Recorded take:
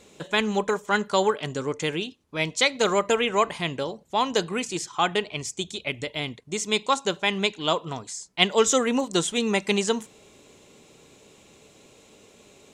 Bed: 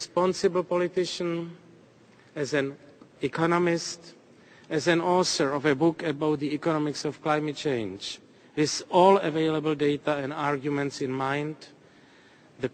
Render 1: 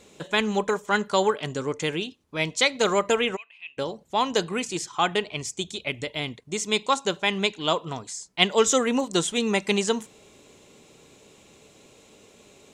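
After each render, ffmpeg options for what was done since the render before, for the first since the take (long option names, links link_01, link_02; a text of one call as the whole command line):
ffmpeg -i in.wav -filter_complex "[0:a]asplit=3[link_01][link_02][link_03];[link_01]afade=type=out:start_time=3.35:duration=0.02[link_04];[link_02]bandpass=frequency=2600:width_type=q:width=19,afade=type=in:start_time=3.35:duration=0.02,afade=type=out:start_time=3.77:duration=0.02[link_05];[link_03]afade=type=in:start_time=3.77:duration=0.02[link_06];[link_04][link_05][link_06]amix=inputs=3:normalize=0" out.wav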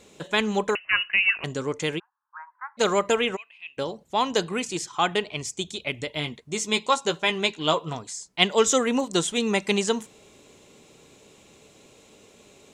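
ffmpeg -i in.wav -filter_complex "[0:a]asettb=1/sr,asplit=3[link_01][link_02][link_03];[link_01]atrim=end=0.754[link_04];[link_02]atrim=start=0.75:end=1.44,asetpts=PTS-STARTPTS,afade=type=in:duration=0.004:curve=qsin,afade=type=out:start_time=0.686:duration=0.004:curve=qsin,lowpass=frequency=2600:width_type=q:width=0.5098,lowpass=frequency=2600:width_type=q:width=0.6013,lowpass=frequency=2600:width_type=q:width=0.9,lowpass=frequency=2600:width_type=q:width=2.563,afreqshift=-3100[link_05];[link_03]atrim=start=1.436[link_06];[link_04][link_05]acrossfade=duration=0.004:curve1=hsin:curve2=qsin[link_07];[link_07][link_06]acrossfade=duration=0.004:curve1=qsin:curve2=hsin,asplit=3[link_08][link_09][link_10];[link_08]afade=type=out:start_time=1.98:duration=0.02[link_11];[link_09]asuperpass=centerf=1200:order=12:qfactor=1.5,afade=type=in:start_time=1.98:duration=0.02,afade=type=out:start_time=2.77:duration=0.02[link_12];[link_10]afade=type=in:start_time=2.77:duration=0.02[link_13];[link_11][link_12][link_13]amix=inputs=3:normalize=0,asettb=1/sr,asplit=3[link_14][link_15][link_16];[link_14]atrim=end=6.154[link_17];[link_15]atrim=start=6.15:end=7.95,asetpts=PTS-STARTPTS,afade=type=in:duration=0.004:curve=qsin,afade=type=out:start_time=1.796:duration=0.004:curve=qsin,asplit=2[link_18][link_19];[link_19]adelay=13,volume=-7dB[link_20];[link_18][link_20]amix=inputs=2:normalize=0,atrim=end_sample=79380[link_21];[link_16]atrim=start=7.946[link_22];[link_17][link_21]acrossfade=duration=0.004:curve1=hsin:curve2=qsin[link_23];[link_23][link_22]acrossfade=duration=0.004:curve1=qsin:curve2=hsin" out.wav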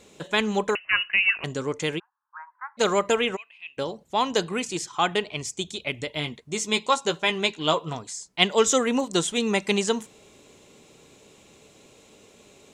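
ffmpeg -i in.wav -af anull out.wav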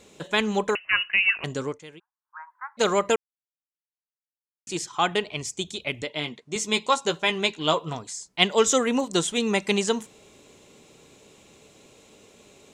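ffmpeg -i in.wav -filter_complex "[0:a]asettb=1/sr,asplit=3[link_01][link_02][link_03];[link_01]atrim=end=6.024[link_04];[link_02]atrim=start=6.02:end=6.56,asetpts=PTS-STARTPTS,afade=type=in:duration=0.004:curve=qsin,afade=type=out:start_time=0.536:duration=0.004:curve=qsin,highpass=170,lowpass=7600[link_05];[link_03]atrim=start=6.556[link_06];[link_04][link_05]acrossfade=duration=0.004:curve1=hsin:curve2=qsin[link_07];[link_07][link_06]acrossfade=duration=0.004:curve1=qsin:curve2=hsin,asplit=5[link_08][link_09][link_10][link_11][link_12];[link_08]atrim=end=1.8,asetpts=PTS-STARTPTS,afade=type=out:start_time=1.65:duration=0.15:silence=0.141254[link_13];[link_09]atrim=start=1.8:end=2.23,asetpts=PTS-STARTPTS,volume=-17dB[link_14];[link_10]atrim=start=2.23:end=3.16,asetpts=PTS-STARTPTS,afade=type=in:duration=0.15:silence=0.141254,afade=type=out:start_time=0.926:duration=0.004:curve=hsin[link_15];[link_11]atrim=start=3.16:end=4.67,asetpts=PTS-STARTPTS,volume=0[link_16];[link_12]atrim=start=4.67,asetpts=PTS-STARTPTS,afade=type=in:duration=0.004:curve=hsin[link_17];[link_13][link_14][link_15][link_16][link_17]concat=n=5:v=0:a=1" out.wav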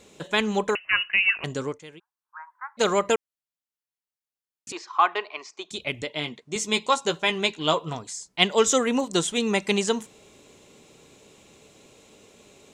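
ffmpeg -i in.wav -filter_complex "[0:a]asettb=1/sr,asplit=3[link_01][link_02][link_03];[link_01]atrim=end=4.724[link_04];[link_02]atrim=start=4.72:end=5.71,asetpts=PTS-STARTPTS,afade=type=in:duration=0.004:curve=qsin,afade=type=out:start_time=0.986:duration=0.004:curve=qsin,highpass=frequency=400:width=0.5412,highpass=frequency=400:width=1.3066,equalizer=frequency=500:width_type=q:width=4:gain=-9,equalizer=frequency=1100:width_type=q:width=4:gain=10,equalizer=frequency=3300:width_type=q:width=4:gain=-10,lowpass=frequency=4600:width=0.5412,lowpass=frequency=4600:width=1.3066[link_05];[link_03]atrim=start=5.706[link_06];[link_04][link_05]acrossfade=duration=0.004:curve1=hsin:curve2=qsin[link_07];[link_07][link_06]acrossfade=duration=0.004:curve1=qsin:curve2=hsin" out.wav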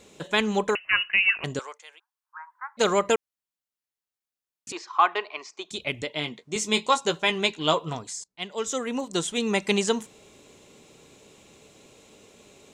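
ffmpeg -i in.wav -filter_complex "[0:a]asettb=1/sr,asplit=3[link_01][link_02][link_03];[link_01]atrim=end=1.594[link_04];[link_02]atrim=start=1.59:end=2.56,asetpts=PTS-STARTPTS,afade=type=in:duration=0.004:curve=qsin,afade=type=out:start_time=0.966:duration=0.004:curve=qsin,highpass=frequency=680:width=0.5412,highpass=frequency=680:width=1.3066[link_05];[link_03]atrim=start=2.556[link_06];[link_04][link_05]acrossfade=duration=0.004:curve1=hsin:curve2=qsin[link_07];[link_07][link_06]acrossfade=duration=0.004:curve1=qsin:curve2=hsin,asettb=1/sr,asplit=3[link_08][link_09][link_10];[link_08]atrim=end=6.324[link_11];[link_09]atrim=start=6.32:end=6.98,asetpts=PTS-STARTPTS,afade=type=in:duration=0.004:curve=qsin,afade=type=out:start_time=0.656:duration=0.004:curve=qsin,asplit=2[link_12][link_13];[link_13]adelay=23,volume=-13dB[link_14];[link_12][link_14]amix=inputs=2:normalize=0,atrim=end_sample=29106[link_15];[link_10]atrim=start=6.976[link_16];[link_11][link_15]acrossfade=duration=0.004:curve1=hsin:curve2=qsin[link_17];[link_17][link_16]acrossfade=duration=0.004:curve1=qsin:curve2=hsin,asplit=2[link_18][link_19];[link_18]atrim=end=8.24,asetpts=PTS-STARTPTS,afade=type=out:start_time=8.236:duration=0.004:curve=hsin:silence=0.0749894[link_20];[link_19]atrim=start=8.24,asetpts=PTS-STARTPTS,afade=type=in:duration=1.46:silence=0.0749894[link_21];[link_20][link_21]concat=n=2:v=0:a=1" out.wav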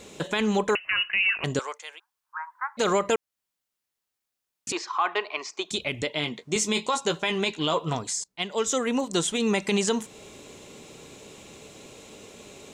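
ffmpeg -i in.wav -filter_complex "[0:a]asplit=2[link_01][link_02];[link_02]acompressor=threshold=-33dB:ratio=6,volume=1.5dB[link_03];[link_01][link_03]amix=inputs=2:normalize=0,alimiter=limit=-14.5dB:level=0:latency=1:release=24" out.wav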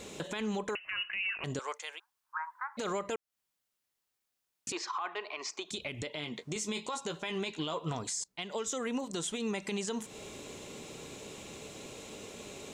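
ffmpeg -i in.wav -af "acompressor=threshold=-30dB:ratio=6,alimiter=level_in=2dB:limit=-24dB:level=0:latency=1:release=89,volume=-2dB" out.wav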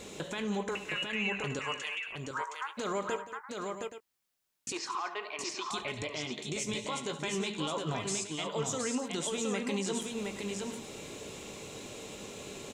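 ffmpeg -i in.wav -filter_complex "[0:a]asplit=2[link_01][link_02];[link_02]adelay=20,volume=-13.5dB[link_03];[link_01][link_03]amix=inputs=2:normalize=0,asplit=2[link_04][link_05];[link_05]aecho=0:1:71|173|230|717|824:0.178|0.168|0.168|0.631|0.237[link_06];[link_04][link_06]amix=inputs=2:normalize=0" out.wav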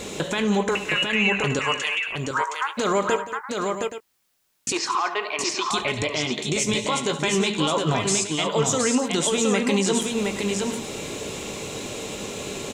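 ffmpeg -i in.wav -af "volume=12dB" out.wav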